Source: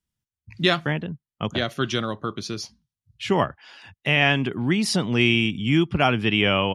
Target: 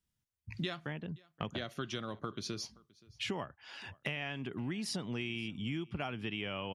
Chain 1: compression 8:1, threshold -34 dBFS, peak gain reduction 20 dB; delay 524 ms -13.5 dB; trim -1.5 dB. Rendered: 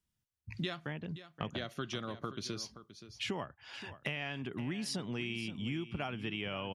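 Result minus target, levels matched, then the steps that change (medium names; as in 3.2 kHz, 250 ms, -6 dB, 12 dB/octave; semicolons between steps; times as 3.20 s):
echo-to-direct +11 dB
change: delay 524 ms -24.5 dB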